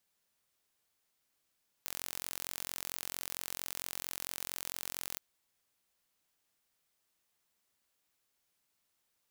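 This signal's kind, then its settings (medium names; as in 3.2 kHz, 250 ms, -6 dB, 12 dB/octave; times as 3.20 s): pulse train 44.4 per s, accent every 0, -12 dBFS 3.32 s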